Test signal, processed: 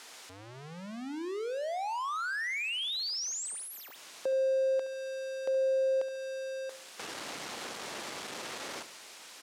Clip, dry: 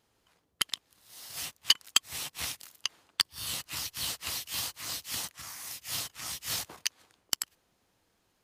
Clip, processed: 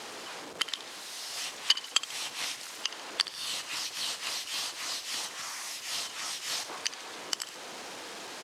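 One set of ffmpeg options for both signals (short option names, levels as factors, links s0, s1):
-filter_complex "[0:a]aeval=exprs='val(0)+0.5*0.0133*sgn(val(0))':c=same,asplit=2[s0][s1];[s1]acompressor=threshold=0.0112:ratio=6,volume=0.891[s2];[s0][s2]amix=inputs=2:normalize=0,highpass=330,lowpass=7400,aecho=1:1:70|140|210|280:0.2|0.0838|0.0352|0.0148,volume=0.75"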